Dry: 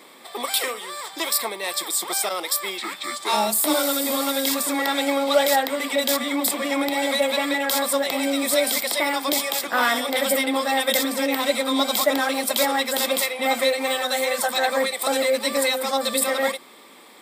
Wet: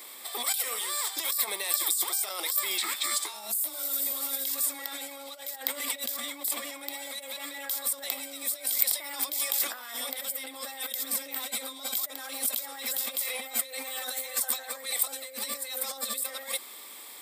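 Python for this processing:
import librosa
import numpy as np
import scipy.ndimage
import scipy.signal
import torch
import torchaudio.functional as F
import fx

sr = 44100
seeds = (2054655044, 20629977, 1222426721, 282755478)

y = fx.over_compress(x, sr, threshold_db=-30.0, ratio=-1.0)
y = fx.riaa(y, sr, side='recording')
y = y * librosa.db_to_amplitude(-10.5)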